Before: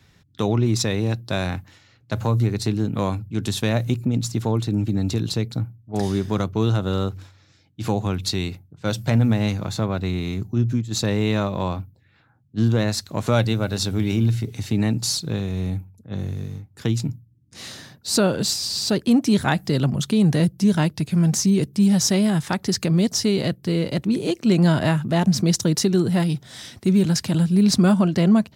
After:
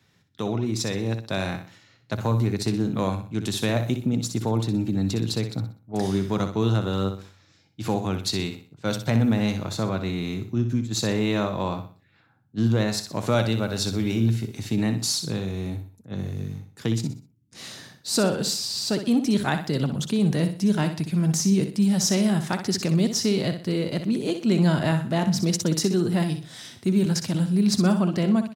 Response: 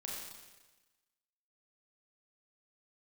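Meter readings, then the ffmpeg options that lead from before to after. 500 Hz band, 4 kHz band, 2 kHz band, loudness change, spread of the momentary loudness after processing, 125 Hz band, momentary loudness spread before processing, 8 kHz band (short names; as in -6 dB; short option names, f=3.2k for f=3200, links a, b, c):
-2.5 dB, -2.5 dB, -2.5 dB, -3.0 dB, 11 LU, -4.0 dB, 11 LU, -2.5 dB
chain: -af "highpass=110,aecho=1:1:62|124|186|248:0.355|0.124|0.0435|0.0152,dynaudnorm=f=760:g=3:m=4.5dB,volume=-6dB"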